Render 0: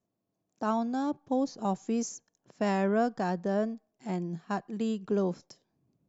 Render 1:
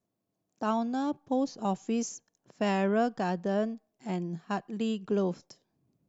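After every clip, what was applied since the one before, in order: dynamic bell 2.9 kHz, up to +7 dB, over -60 dBFS, Q 2.9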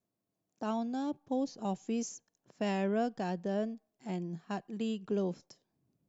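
dynamic bell 1.2 kHz, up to -6 dB, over -47 dBFS, Q 1.6; trim -4 dB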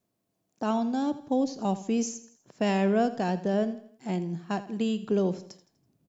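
feedback delay 82 ms, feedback 44%, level -15 dB; trim +7 dB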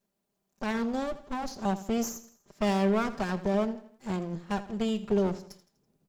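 comb filter that takes the minimum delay 5 ms

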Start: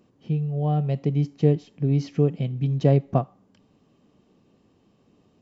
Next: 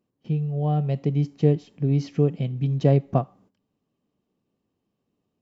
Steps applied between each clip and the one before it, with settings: gate -53 dBFS, range -16 dB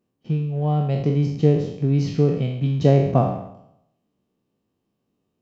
spectral sustain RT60 0.81 s; in parallel at -11.5 dB: crossover distortion -35 dBFS

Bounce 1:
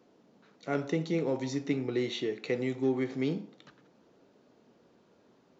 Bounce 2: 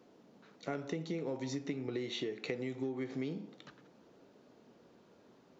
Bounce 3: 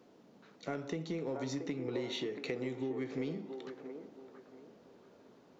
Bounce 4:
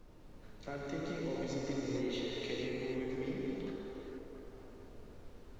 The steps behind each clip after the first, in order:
compression 12:1, threshold -35 dBFS, peak gain reduction 12.5 dB; trim +1 dB
in parallel at -9.5 dB: hard clipper -34.5 dBFS, distortion -12 dB; on the sum: feedback echo behind a band-pass 679 ms, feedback 30%, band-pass 690 Hz, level -4 dB; trim -2 dB
added noise brown -52 dBFS; gated-style reverb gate 500 ms flat, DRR -4 dB; trim -5.5 dB

